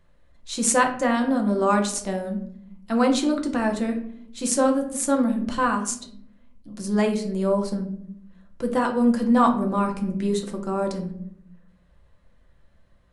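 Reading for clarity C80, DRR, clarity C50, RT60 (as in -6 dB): 13.5 dB, 2.5 dB, 9.5 dB, 0.70 s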